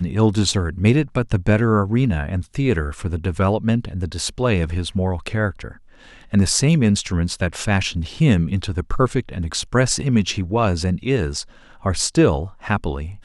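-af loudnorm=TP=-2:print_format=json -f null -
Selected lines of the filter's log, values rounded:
"input_i" : "-20.4",
"input_tp" : "-1.7",
"input_lra" : "2.1",
"input_thresh" : "-30.6",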